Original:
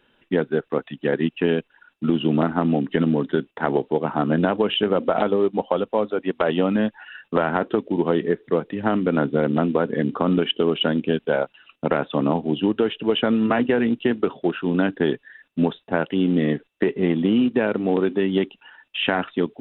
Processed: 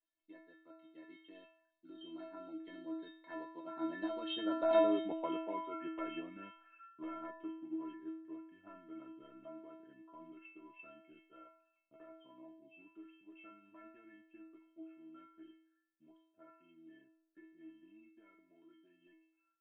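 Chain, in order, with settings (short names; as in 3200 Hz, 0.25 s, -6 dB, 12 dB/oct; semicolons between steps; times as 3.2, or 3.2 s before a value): Doppler pass-by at 5.01, 32 m/s, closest 10 m; metallic resonator 320 Hz, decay 0.73 s, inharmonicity 0.008; gain +11.5 dB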